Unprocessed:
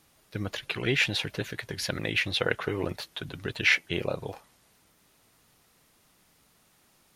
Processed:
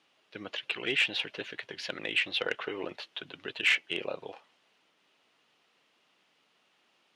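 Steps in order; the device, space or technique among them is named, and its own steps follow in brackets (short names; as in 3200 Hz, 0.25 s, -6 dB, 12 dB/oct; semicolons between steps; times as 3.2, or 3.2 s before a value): intercom (BPF 310–4200 Hz; bell 2900 Hz +8 dB 0.51 oct; soft clip -12 dBFS, distortion -18 dB); gain -4 dB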